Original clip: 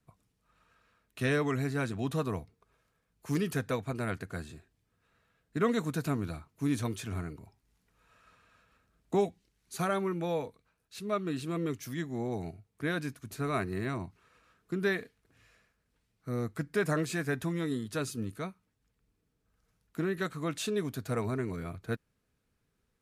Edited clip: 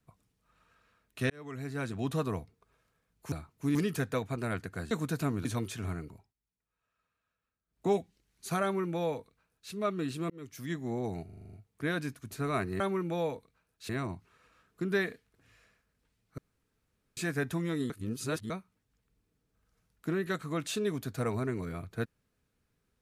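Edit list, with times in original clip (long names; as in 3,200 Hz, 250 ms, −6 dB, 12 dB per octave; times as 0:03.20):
0:01.30–0:02.05: fade in
0:04.48–0:05.76: remove
0:06.30–0:06.73: move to 0:03.32
0:07.38–0:09.20: duck −20 dB, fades 0.24 s
0:09.91–0:11.00: duplicate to 0:13.80
0:11.58–0:12.00: fade in
0:12.53: stutter 0.04 s, 8 plays
0:16.29–0:17.08: fill with room tone
0:17.81–0:18.41: reverse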